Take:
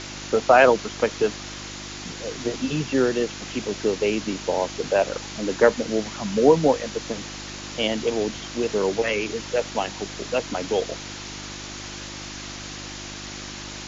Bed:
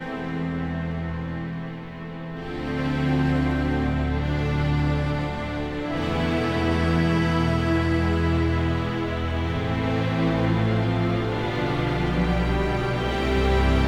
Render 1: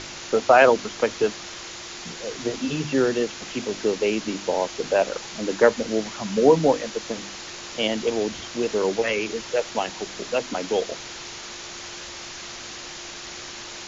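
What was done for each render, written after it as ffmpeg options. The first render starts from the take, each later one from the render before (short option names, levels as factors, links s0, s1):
-af "bandreject=f=50:t=h:w=4,bandreject=f=100:t=h:w=4,bandreject=f=150:t=h:w=4,bandreject=f=200:t=h:w=4,bandreject=f=250:t=h:w=4,bandreject=f=300:t=h:w=4"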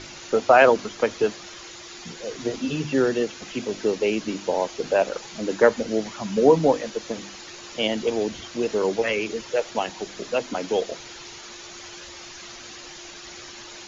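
-af "afftdn=nr=8:nf=-38"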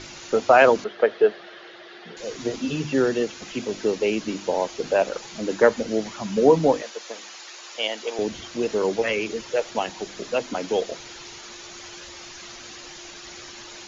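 -filter_complex "[0:a]asettb=1/sr,asplit=3[s0][s1][s2];[s0]atrim=end=0.844[s3];[s1]atrim=start=0.84:end=2.17,asetpts=PTS-STARTPTS,afade=t=in:d=0.004:c=qsin,afade=t=out:st=1.326:d=0.004:c=qsin,highpass=240,equalizer=f=270:t=q:w=4:g=-8,equalizer=f=420:t=q:w=4:g=6,equalizer=f=650:t=q:w=4:g=6,equalizer=f=1000:t=q:w=4:g=-6,equalizer=f=1700:t=q:w=4:g=5,equalizer=f=2400:t=q:w=4:g=-6,lowpass=f=3500:w=0.5412,lowpass=f=3500:w=1.3066[s4];[s2]atrim=start=2.166[s5];[s3][s4]acrossfade=d=0.004:c1=hsin:c2=qsin[s6];[s6][s5]acrossfade=d=0.004:c1=qsin:c2=hsin,asettb=1/sr,asplit=3[s7][s8][s9];[s7]atrim=end=6.824[s10];[s8]atrim=start=6.82:end=8.19,asetpts=PTS-STARTPTS,afade=t=in:d=0.004:c=qsin,afade=t=out:st=1.366:d=0.004:c=qsin,highpass=610[s11];[s9]atrim=start=8.186[s12];[s10][s11]acrossfade=d=0.004:c1=hsin:c2=qsin[s13];[s13][s12]acrossfade=d=0.004:c1=qsin:c2=hsin"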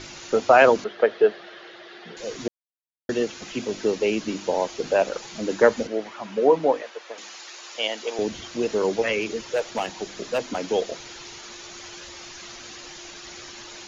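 -filter_complex "[0:a]asettb=1/sr,asplit=3[s0][s1][s2];[s0]atrim=end=5.874[s3];[s1]atrim=start=5.87:end=7.18,asetpts=PTS-STARTPTS,afade=t=in:d=0.004:c=qsin,afade=t=out:st=1.306:d=0.004:c=qsin,bass=f=250:g=-15,treble=f=4000:g=-14[s4];[s2]atrim=start=7.176[s5];[s3][s4]acrossfade=d=0.004:c1=hsin:c2=qsin[s6];[s6][s5]acrossfade=d=0.004:c1=qsin:c2=hsin,asettb=1/sr,asplit=3[s7][s8][s9];[s7]atrim=end=9.214[s10];[s8]atrim=start=9.21:end=10.6,asetpts=PTS-STARTPTS,afade=t=in:d=0.004:c=qsin,afade=t=out:st=1.386:d=0.004:c=qsin,volume=7.94,asoftclip=hard,volume=0.126[s11];[s9]atrim=start=10.596[s12];[s10][s11]acrossfade=d=0.004:c1=hsin:c2=qsin[s13];[s13][s12]acrossfade=d=0.004:c1=qsin:c2=hsin,asplit=3[s14][s15][s16];[s14]atrim=end=2.48,asetpts=PTS-STARTPTS,afade=t=out:st=2.476:d=0.004:c=hsin[s17];[s15]atrim=start=2.48:end=3.09,asetpts=PTS-STARTPTS,volume=0[s18];[s16]atrim=start=3.09,asetpts=PTS-STARTPTS,afade=t=in:d=0.004:c=hsin[s19];[s17][s18][s19]concat=n=3:v=0:a=1"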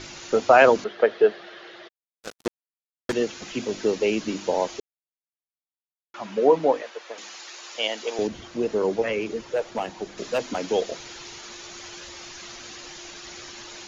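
-filter_complex "[0:a]asplit=3[s0][s1][s2];[s0]afade=t=out:st=1.87:d=0.02[s3];[s1]acrusher=bits=3:mix=0:aa=0.5,afade=t=in:st=1.87:d=0.02,afade=t=out:st=3.12:d=0.02[s4];[s2]afade=t=in:st=3.12:d=0.02[s5];[s3][s4][s5]amix=inputs=3:normalize=0,asettb=1/sr,asplit=3[s6][s7][s8];[s6]atrim=end=8.274[s9];[s7]atrim=start=8.27:end=10.18,asetpts=PTS-STARTPTS,afade=t=in:d=0.004:c=qsin,afade=t=out:st=1.906:d=0.004:c=qsin,highshelf=f=2000:g=-9[s10];[s8]atrim=start=10.176[s11];[s9][s10]acrossfade=d=0.004:c1=hsin:c2=qsin[s12];[s12][s11]acrossfade=d=0.004:c1=qsin:c2=hsin,asplit=3[s13][s14][s15];[s13]atrim=end=4.8,asetpts=PTS-STARTPTS,afade=t=out:st=4.796:d=0.004:c=hsin[s16];[s14]atrim=start=4.8:end=6.14,asetpts=PTS-STARTPTS,volume=0[s17];[s15]atrim=start=6.14,asetpts=PTS-STARTPTS,afade=t=in:d=0.004:c=hsin[s18];[s16][s17][s18]concat=n=3:v=0:a=1"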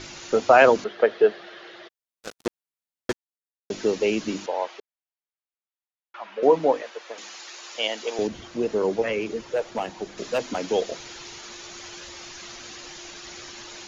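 -filter_complex "[0:a]asettb=1/sr,asplit=3[s0][s1][s2];[s0]atrim=end=4.464[s3];[s1]atrim=start=4.46:end=6.43,asetpts=PTS-STARTPTS,afade=t=in:d=0.004:c=qsin,afade=t=out:st=1.966:d=0.004:c=qsin,highpass=640,lowpass=3000[s4];[s2]atrim=start=6.426[s5];[s3][s4]acrossfade=d=0.004:c1=hsin:c2=qsin[s6];[s6][s5]acrossfade=d=0.004:c1=qsin:c2=hsin,asplit=3[s7][s8][s9];[s7]atrim=end=3.13,asetpts=PTS-STARTPTS,afade=t=out:st=3.126:d=0.004:c=hsin[s10];[s8]atrim=start=3.13:end=3.7,asetpts=PTS-STARTPTS,volume=0[s11];[s9]atrim=start=3.7,asetpts=PTS-STARTPTS,afade=t=in:d=0.004:c=hsin[s12];[s10][s11][s12]concat=n=3:v=0:a=1"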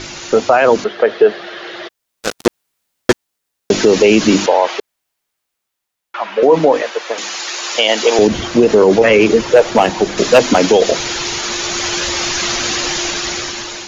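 -af "dynaudnorm=f=260:g=7:m=3.76,alimiter=level_in=3.55:limit=0.891:release=50:level=0:latency=1"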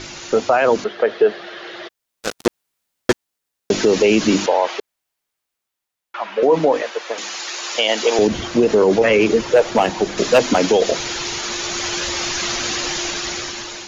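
-af "volume=0.596"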